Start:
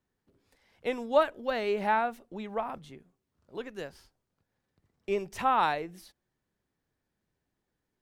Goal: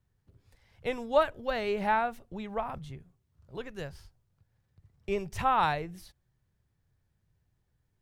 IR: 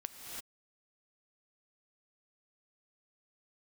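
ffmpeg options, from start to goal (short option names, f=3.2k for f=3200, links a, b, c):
-af "lowshelf=f=170:t=q:w=1.5:g=12"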